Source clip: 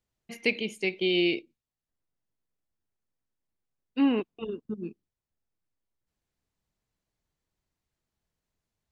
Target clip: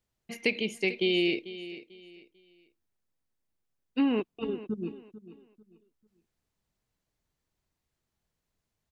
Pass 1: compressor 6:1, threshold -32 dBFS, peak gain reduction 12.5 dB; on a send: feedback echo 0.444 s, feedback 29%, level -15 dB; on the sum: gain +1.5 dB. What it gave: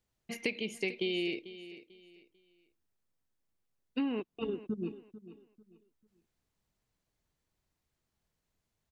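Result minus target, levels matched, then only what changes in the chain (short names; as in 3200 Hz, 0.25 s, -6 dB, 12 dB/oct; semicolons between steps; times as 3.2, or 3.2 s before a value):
compressor: peak gain reduction +7.5 dB
change: compressor 6:1, threshold -23 dBFS, peak gain reduction 5 dB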